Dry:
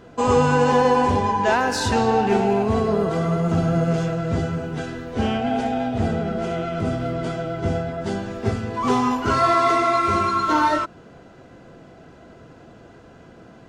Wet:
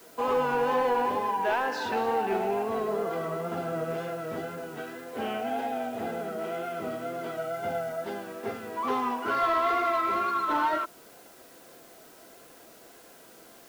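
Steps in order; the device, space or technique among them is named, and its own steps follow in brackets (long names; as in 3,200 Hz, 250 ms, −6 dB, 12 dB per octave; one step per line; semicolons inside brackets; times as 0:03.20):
tape answering machine (band-pass filter 350–3,100 Hz; soft clipping −12.5 dBFS, distortion −19 dB; tape wow and flutter; white noise bed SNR 25 dB)
0:07.37–0:08.04: comb filter 1.4 ms, depth 56%
level −5.5 dB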